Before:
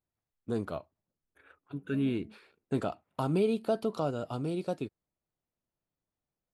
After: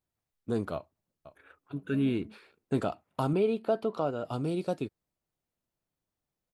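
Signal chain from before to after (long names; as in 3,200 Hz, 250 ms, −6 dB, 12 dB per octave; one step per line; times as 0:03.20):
0:00.74–0:01.75: delay throw 510 ms, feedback 15%, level −14.5 dB
0:03.33–0:04.25: bass and treble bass −6 dB, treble −12 dB
level +2 dB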